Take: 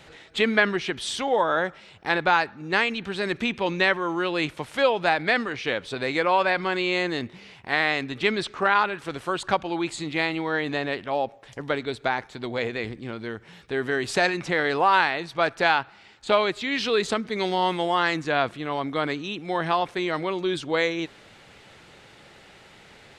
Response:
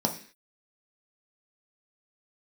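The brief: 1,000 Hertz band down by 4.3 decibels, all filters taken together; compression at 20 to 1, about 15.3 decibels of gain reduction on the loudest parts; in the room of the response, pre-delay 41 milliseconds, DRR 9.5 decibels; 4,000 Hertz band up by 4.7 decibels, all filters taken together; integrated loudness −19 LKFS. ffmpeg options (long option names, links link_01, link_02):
-filter_complex "[0:a]equalizer=frequency=1000:width_type=o:gain=-6,equalizer=frequency=4000:width_type=o:gain=6,acompressor=threshold=-31dB:ratio=20,asplit=2[link_01][link_02];[1:a]atrim=start_sample=2205,adelay=41[link_03];[link_02][link_03]afir=irnorm=-1:irlink=0,volume=-18.5dB[link_04];[link_01][link_04]amix=inputs=2:normalize=0,volume=16dB"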